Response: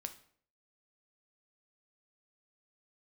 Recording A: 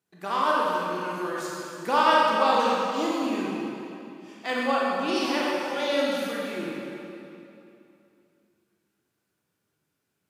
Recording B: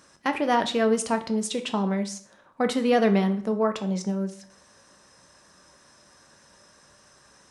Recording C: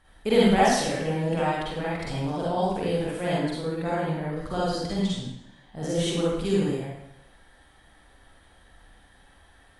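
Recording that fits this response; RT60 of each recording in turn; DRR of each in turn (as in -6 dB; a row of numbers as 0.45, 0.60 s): B; 2.9, 0.55, 0.75 s; -5.0, 7.0, -7.5 dB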